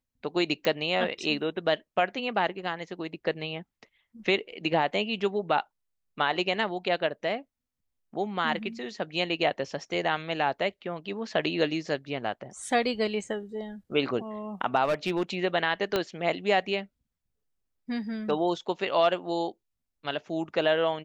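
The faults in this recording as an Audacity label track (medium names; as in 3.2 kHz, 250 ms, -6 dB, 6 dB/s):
0.650000	0.650000	pop -14 dBFS
14.840000	15.350000	clipped -21.5 dBFS
15.960000	15.960000	pop -12 dBFS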